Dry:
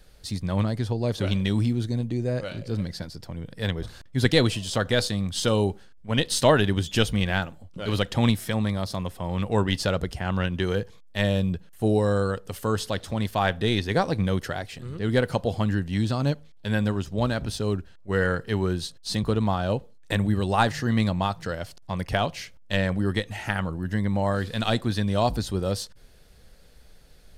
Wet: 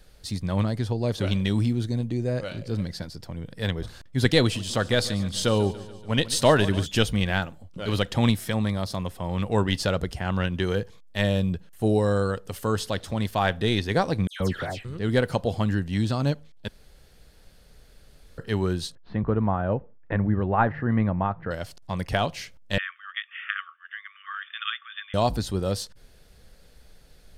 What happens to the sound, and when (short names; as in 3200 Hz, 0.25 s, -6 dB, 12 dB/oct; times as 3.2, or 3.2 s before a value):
4.41–6.86 feedback echo 0.143 s, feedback 58%, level -17 dB
14.27–14.85 dispersion lows, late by 0.133 s, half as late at 2300 Hz
16.68–18.38 room tone
18.95–21.51 LPF 1900 Hz 24 dB/oct
22.78–25.14 brick-wall FIR band-pass 1100–3600 Hz